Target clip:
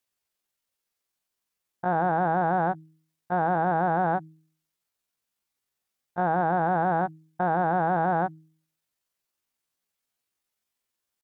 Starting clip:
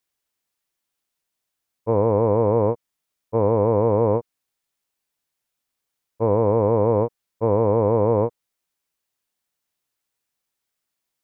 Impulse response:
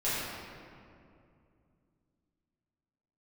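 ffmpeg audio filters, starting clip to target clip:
-af "bandreject=f=99.85:t=h:w=4,bandreject=f=199.7:t=h:w=4,alimiter=limit=-14dB:level=0:latency=1:release=43,asetrate=70004,aresample=44100,atempo=0.629961"

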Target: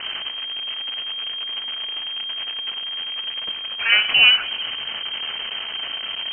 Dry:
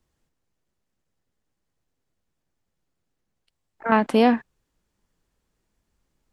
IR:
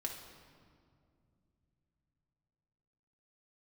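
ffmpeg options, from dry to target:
-filter_complex "[0:a]aeval=exprs='val(0)+0.5*0.0631*sgn(val(0))':c=same,lowpass=f=2.7k:t=q:w=0.5098,lowpass=f=2.7k:t=q:w=0.6013,lowpass=f=2.7k:t=q:w=0.9,lowpass=f=2.7k:t=q:w=2.563,afreqshift=-3200,asplit=2[a][b];[1:a]atrim=start_sample=2205[c];[b][c]afir=irnorm=-1:irlink=0,volume=-3.5dB[d];[a][d]amix=inputs=2:normalize=0,volume=-1.5dB"

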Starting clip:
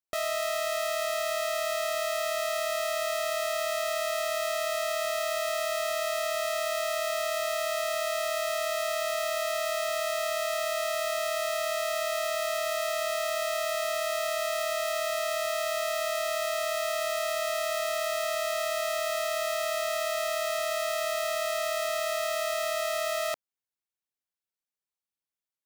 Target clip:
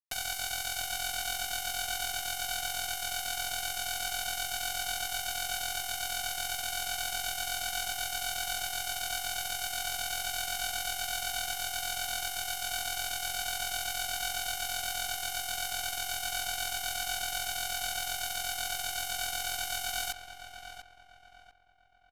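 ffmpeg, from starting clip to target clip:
-filter_complex "[0:a]highshelf=f=3.8k:g=11.5,bandreject=f=1.1k:w=21,aecho=1:1:4.5:0.57,alimiter=limit=-19.5dB:level=0:latency=1:release=233,acrusher=bits=4:mix=0:aa=0.000001,asetrate=51156,aresample=44100,aresample=32000,aresample=44100,asplit=2[a][b];[b]adelay=694,lowpass=f=2.3k:p=1,volume=-8dB,asplit=2[c][d];[d]adelay=694,lowpass=f=2.3k:p=1,volume=0.39,asplit=2[e][f];[f]adelay=694,lowpass=f=2.3k:p=1,volume=0.39,asplit=2[g][h];[h]adelay=694,lowpass=f=2.3k:p=1,volume=0.39[i];[c][e][g][i]amix=inputs=4:normalize=0[j];[a][j]amix=inputs=2:normalize=0"

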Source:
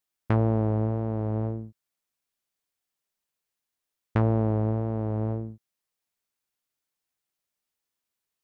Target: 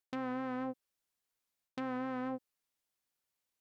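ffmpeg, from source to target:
-af "areverse,acompressor=threshold=-37dB:ratio=12,areverse,asetrate=103194,aresample=44100,volume=2dB"

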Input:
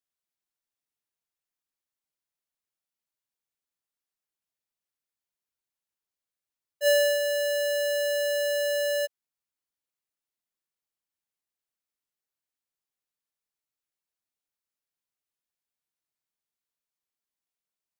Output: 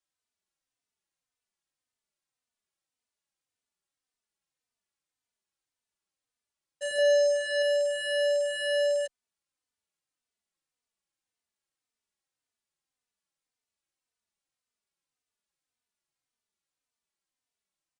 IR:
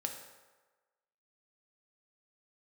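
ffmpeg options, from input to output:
-filter_complex "[0:a]asettb=1/sr,asplit=3[a][b][c];[a]atrim=end=6.984[d];[b]atrim=start=6.98:end=7.62,asetpts=PTS-STARTPTS,afade=t=in:d=0.004:c=qsin,afade=t=out:st=0.636:d=0.004:c=qsin,aecho=1:1:1.7:0.43,atrim=end_sample=28224[e];[c]atrim=start=7.616[f];[d][e]acrossfade=d=0.004:c1=hsin:c2=qsin[g];[g][f]acrossfade=d=0.004:c1=qsin:c2=hsin,acrossover=split=770[h][i];[i]alimiter=level_in=1.5dB:limit=-24dB:level=0:latency=1:release=134,volume=-1.5dB[j];[h][j]amix=inputs=2:normalize=0,acontrast=31,asplit=2[k][l];[l]aeval=exprs='(mod(17.8*val(0)+1,2)-1)/17.8':c=same,volume=-10dB[m];[k][m]amix=inputs=2:normalize=0,aresample=22050,aresample=44100,asplit=2[n][o];[o]adelay=3.2,afreqshift=-1.8[p];[n][p]amix=inputs=2:normalize=1,volume=-2dB"

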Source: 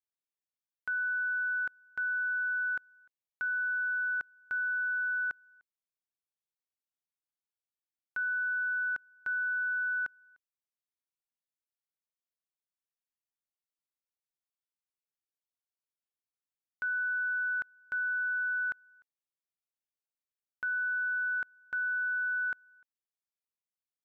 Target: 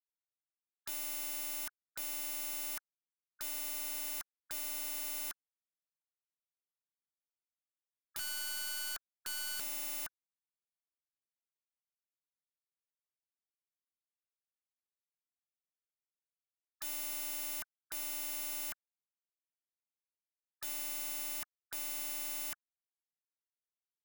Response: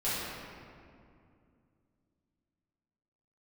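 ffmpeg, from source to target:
-filter_complex "[0:a]asettb=1/sr,asplit=3[a][b][c];[a]atrim=end=8.194[d];[b]atrim=start=8.19:end=9.6,asetpts=PTS-STARTPTS,afade=t=in:d=0.004:c=qsin,afade=t=out:st=1.406:d=0.004:c=qsin,equalizer=f=250:t=o:w=0.33:g=11,equalizer=f=400:t=o:w=0.33:g=-10,equalizer=f=1k:t=o:w=0.33:g=-7,equalizer=f=1.6k:t=o:w=0.33:g=-4[e];[c]atrim=start=9.596[f];[d][e]acrossfade=d=0.004:c1=hsin:c2=qsin[g];[g][f]acrossfade=d=0.004:c1=qsin:c2=hsin,afftfilt=real='re*gte(hypot(re,im),0.0178)':imag='im*gte(hypot(re,im),0.0178)':win_size=1024:overlap=0.75,asplit=2[h][i];[i]aeval=exprs='clip(val(0),-1,0.00316)':c=same,volume=-3dB[j];[h][j]amix=inputs=2:normalize=0,adynamicequalizer=threshold=0.00282:dfrequency=620:dqfactor=1.8:tfrequency=620:tqfactor=1.8:attack=5:release=100:ratio=0.375:range=1.5:mode=boostabove:tftype=bell,aeval=exprs='(mod(100*val(0)+1,2)-1)/100':c=same,volume=6dB"

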